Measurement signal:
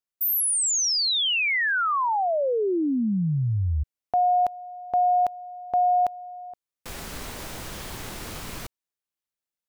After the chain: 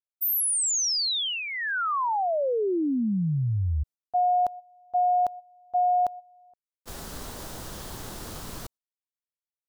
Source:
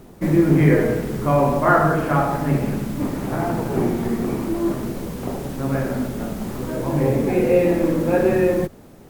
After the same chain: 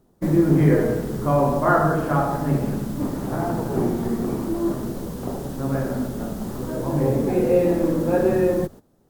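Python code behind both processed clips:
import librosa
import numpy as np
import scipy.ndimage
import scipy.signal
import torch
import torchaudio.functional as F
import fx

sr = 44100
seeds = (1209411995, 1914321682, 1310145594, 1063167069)

y = fx.gate_hold(x, sr, open_db=-28.0, close_db=-33.0, hold_ms=99.0, range_db=-15, attack_ms=13.0, release_ms=24.0)
y = fx.peak_eq(y, sr, hz=2300.0, db=-8.5, octaves=0.76)
y = y * librosa.db_to_amplitude(-1.5)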